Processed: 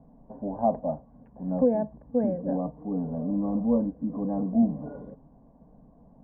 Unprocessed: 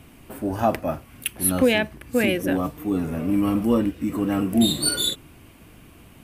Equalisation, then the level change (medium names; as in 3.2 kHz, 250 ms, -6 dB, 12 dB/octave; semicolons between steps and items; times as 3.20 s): steep low-pass 1.3 kHz 48 dB/octave; static phaser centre 350 Hz, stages 6; -2.0 dB